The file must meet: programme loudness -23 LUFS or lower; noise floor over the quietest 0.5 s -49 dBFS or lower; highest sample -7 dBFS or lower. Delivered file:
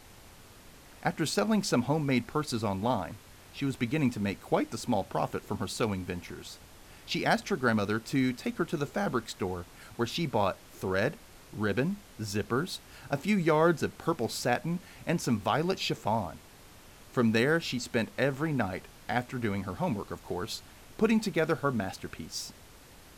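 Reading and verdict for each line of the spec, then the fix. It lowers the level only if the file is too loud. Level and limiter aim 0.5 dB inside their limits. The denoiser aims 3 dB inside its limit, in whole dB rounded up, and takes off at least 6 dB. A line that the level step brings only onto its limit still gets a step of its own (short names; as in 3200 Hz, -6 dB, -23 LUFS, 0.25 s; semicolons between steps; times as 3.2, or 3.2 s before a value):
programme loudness -31.0 LUFS: OK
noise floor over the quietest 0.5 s -53 dBFS: OK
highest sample -11.5 dBFS: OK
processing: none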